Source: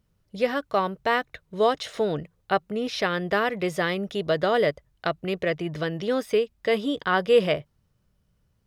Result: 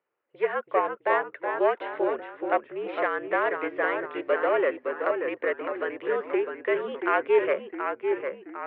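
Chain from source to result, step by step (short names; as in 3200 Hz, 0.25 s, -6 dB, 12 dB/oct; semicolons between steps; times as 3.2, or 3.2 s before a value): self-modulated delay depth 0.12 ms; mistuned SSB -55 Hz 460–2500 Hz; echoes that change speed 0.308 s, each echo -1 st, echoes 3, each echo -6 dB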